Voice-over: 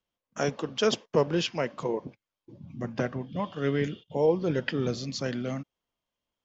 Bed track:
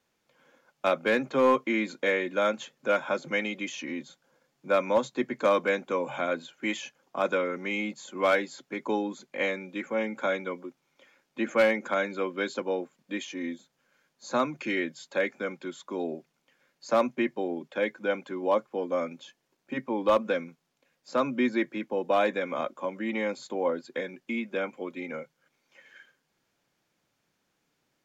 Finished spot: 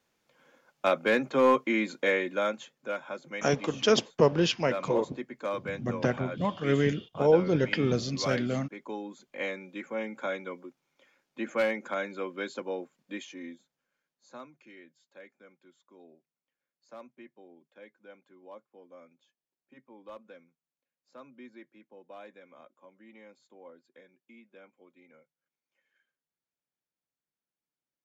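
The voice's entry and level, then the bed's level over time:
3.05 s, +2.0 dB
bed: 0:02.17 0 dB
0:03.00 −9.5 dB
0:08.95 −9.5 dB
0:09.47 −5 dB
0:13.15 −5 dB
0:14.71 −23 dB

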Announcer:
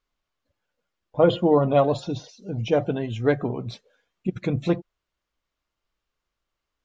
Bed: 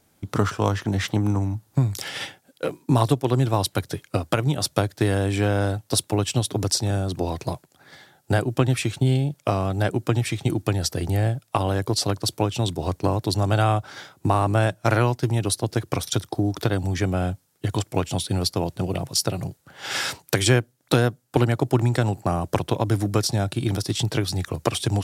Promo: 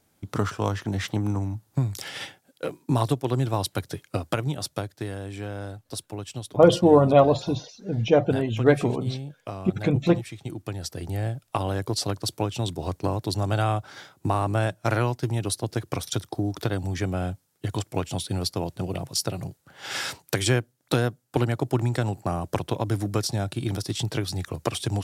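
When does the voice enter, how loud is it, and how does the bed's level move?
5.40 s, +2.5 dB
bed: 0:04.34 −4 dB
0:05.17 −12.5 dB
0:10.35 −12.5 dB
0:11.54 −4 dB

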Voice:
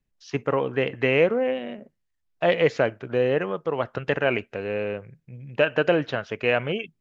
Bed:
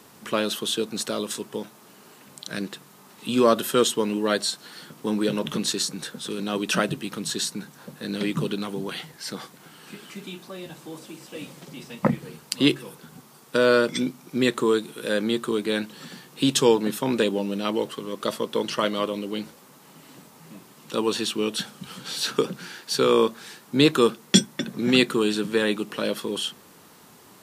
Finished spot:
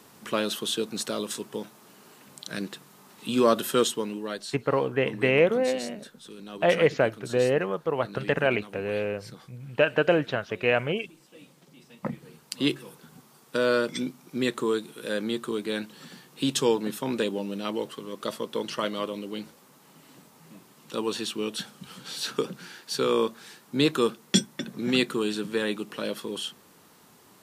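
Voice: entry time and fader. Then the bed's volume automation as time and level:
4.20 s, −1.0 dB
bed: 0:03.79 −2.5 dB
0:04.49 −13.5 dB
0:11.78 −13.5 dB
0:12.75 −5 dB

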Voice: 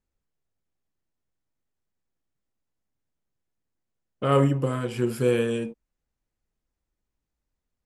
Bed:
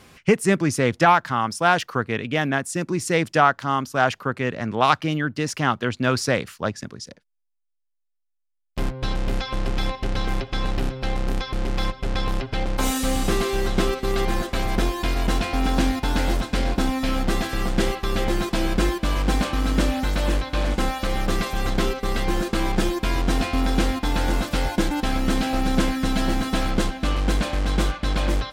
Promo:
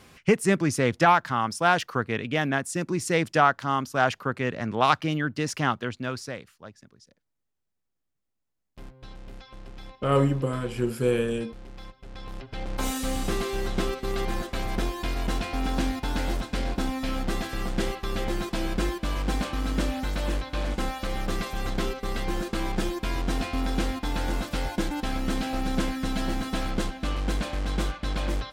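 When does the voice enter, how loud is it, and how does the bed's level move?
5.80 s, −1.5 dB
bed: 0:05.64 −3 dB
0:06.60 −19 dB
0:12.04 −19 dB
0:12.80 −6 dB

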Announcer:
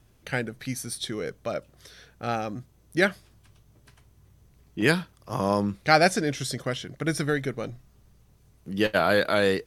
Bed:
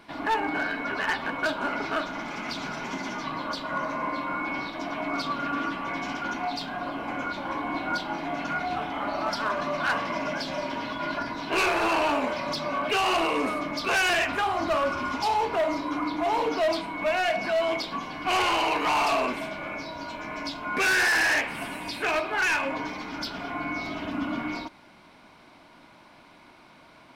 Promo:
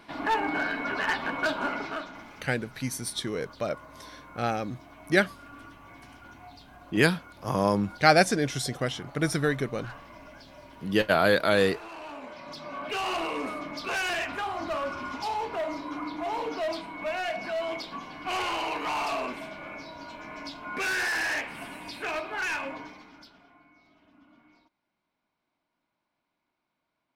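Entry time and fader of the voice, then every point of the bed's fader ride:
2.15 s, 0.0 dB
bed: 0:01.65 −0.5 dB
0:02.60 −18.5 dB
0:11.92 −18.5 dB
0:13.01 −6 dB
0:22.66 −6 dB
0:23.70 −29 dB

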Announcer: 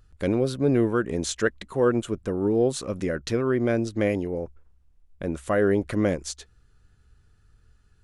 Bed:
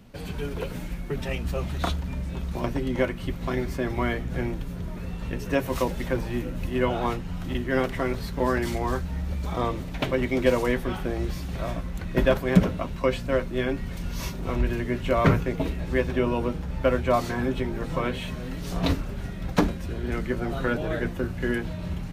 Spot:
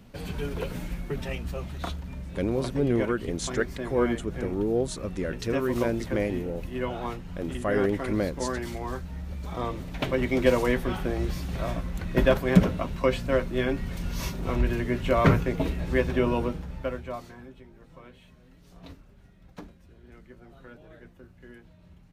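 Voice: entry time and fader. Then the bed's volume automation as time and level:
2.15 s, −4.0 dB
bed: 0:00.98 −0.5 dB
0:01.72 −6.5 dB
0:09.32 −6.5 dB
0:10.34 0 dB
0:16.38 0 dB
0:17.58 −22 dB

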